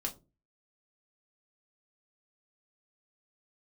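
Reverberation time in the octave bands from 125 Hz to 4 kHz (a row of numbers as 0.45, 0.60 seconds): 0.50, 0.45, 0.35, 0.25, 0.15, 0.15 seconds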